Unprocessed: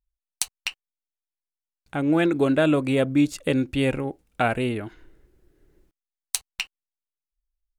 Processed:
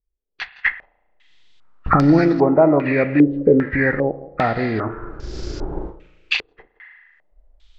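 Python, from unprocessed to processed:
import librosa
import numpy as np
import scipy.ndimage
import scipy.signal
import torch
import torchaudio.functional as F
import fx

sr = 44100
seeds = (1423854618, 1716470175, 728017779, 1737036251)

p1 = fx.freq_compress(x, sr, knee_hz=1100.0, ratio=1.5)
p2 = fx.recorder_agc(p1, sr, target_db=-17.5, rise_db_per_s=44.0, max_gain_db=30)
p3 = fx.low_shelf(p2, sr, hz=300.0, db=9.5, at=(0.55, 2.19))
p4 = p3 + fx.echo_single(p3, sr, ms=169, db=-18.0, dry=0)
p5 = fx.rev_spring(p4, sr, rt60_s=1.3, pass_ms=(35,), chirp_ms=30, drr_db=11.0)
p6 = fx.wow_flutter(p5, sr, seeds[0], rate_hz=2.1, depth_cents=25.0)
p7 = np.sign(p6) * np.maximum(np.abs(p6) - 10.0 ** (-37.0 / 20.0), 0.0)
p8 = p6 + (p7 * librosa.db_to_amplitude(-5.0))
p9 = fx.doubler(p8, sr, ms=37.0, db=-7.5, at=(4.74, 6.47))
p10 = fx.filter_held_lowpass(p9, sr, hz=2.5, low_hz=430.0, high_hz=5000.0)
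y = p10 * librosa.db_to_amplitude(-1.0)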